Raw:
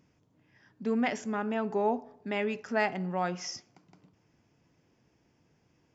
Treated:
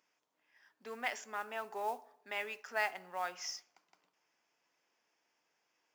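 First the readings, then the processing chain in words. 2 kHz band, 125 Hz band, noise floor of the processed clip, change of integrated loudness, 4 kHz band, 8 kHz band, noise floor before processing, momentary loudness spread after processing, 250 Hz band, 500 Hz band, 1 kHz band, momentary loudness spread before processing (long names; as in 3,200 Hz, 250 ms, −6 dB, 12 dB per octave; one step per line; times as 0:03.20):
−3.0 dB, below −25 dB, −83 dBFS, −8.0 dB, −3.0 dB, can't be measured, −70 dBFS, 11 LU, −25.0 dB, −11.5 dB, −6.0 dB, 9 LU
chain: high-pass filter 830 Hz 12 dB per octave
noise that follows the level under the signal 22 dB
level −3 dB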